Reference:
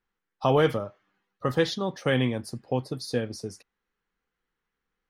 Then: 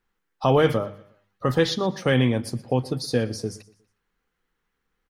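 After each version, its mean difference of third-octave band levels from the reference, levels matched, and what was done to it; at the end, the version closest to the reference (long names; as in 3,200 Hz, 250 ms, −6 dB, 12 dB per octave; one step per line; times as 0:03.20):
2.5 dB: in parallel at −2 dB: brickwall limiter −19.5 dBFS, peak gain reduction 9.5 dB
on the sum: low-shelf EQ 180 Hz +4 dB
mains-hum notches 50/100/150/200 Hz
repeating echo 120 ms, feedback 38%, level −20 dB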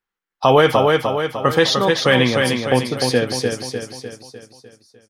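9.0 dB: noise gate −45 dBFS, range −14 dB
low-shelf EQ 420 Hz −9 dB
on a send: repeating echo 301 ms, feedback 51%, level −5 dB
on the sum: boost into a limiter +15 dB
level −1 dB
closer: first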